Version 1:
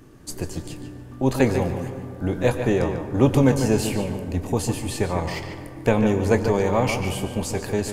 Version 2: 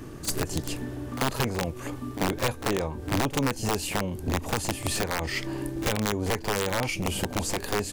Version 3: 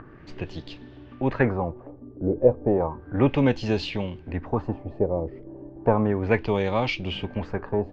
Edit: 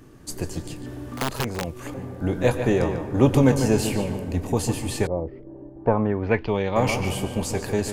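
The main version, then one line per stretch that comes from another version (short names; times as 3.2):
1
0.86–1.94 from 2
5.07–6.76 from 3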